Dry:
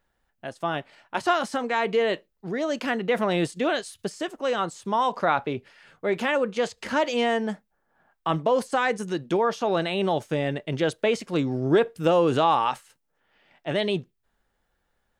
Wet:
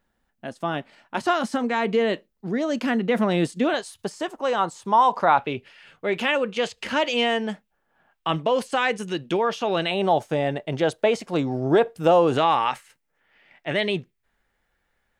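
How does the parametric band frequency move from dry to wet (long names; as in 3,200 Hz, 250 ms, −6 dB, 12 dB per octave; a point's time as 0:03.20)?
parametric band +8 dB 0.74 octaves
230 Hz
from 0:03.74 900 Hz
from 0:05.38 2,800 Hz
from 0:09.91 750 Hz
from 0:12.38 2,100 Hz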